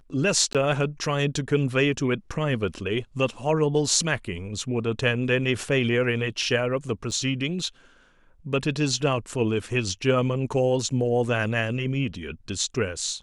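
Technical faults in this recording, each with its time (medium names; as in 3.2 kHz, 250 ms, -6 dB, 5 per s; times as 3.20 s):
0.53–0.55 s: dropout 17 ms
7.11–7.12 s: dropout 6.4 ms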